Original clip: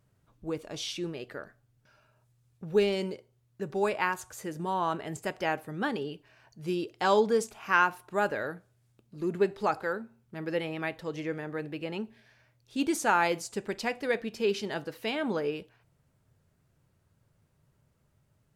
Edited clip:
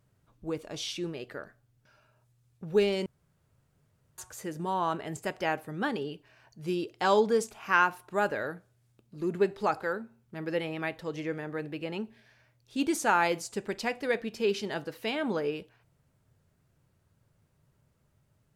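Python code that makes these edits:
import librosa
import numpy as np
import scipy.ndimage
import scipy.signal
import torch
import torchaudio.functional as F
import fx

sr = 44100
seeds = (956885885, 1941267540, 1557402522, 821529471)

y = fx.edit(x, sr, fx.room_tone_fill(start_s=3.06, length_s=1.12), tone=tone)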